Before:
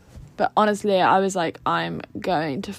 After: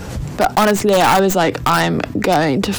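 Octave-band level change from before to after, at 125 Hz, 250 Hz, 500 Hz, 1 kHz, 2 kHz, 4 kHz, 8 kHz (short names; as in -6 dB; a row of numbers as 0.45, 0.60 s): +10.5, +8.5, +7.0, +5.5, +8.0, +9.5, +12.5 dB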